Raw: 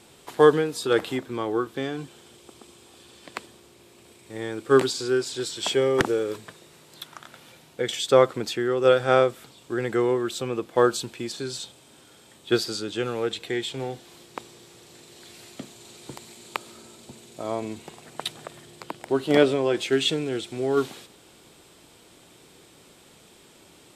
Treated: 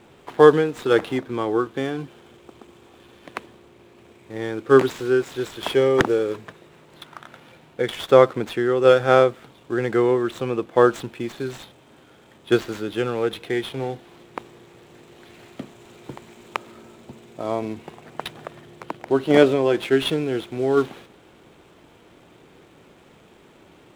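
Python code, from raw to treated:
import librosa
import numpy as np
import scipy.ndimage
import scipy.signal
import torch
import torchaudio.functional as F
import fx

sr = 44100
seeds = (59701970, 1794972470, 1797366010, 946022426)

y = scipy.signal.medfilt(x, 9)
y = fx.high_shelf(y, sr, hz=8100.0, db=-6.5)
y = y * 10.0 ** (4.0 / 20.0)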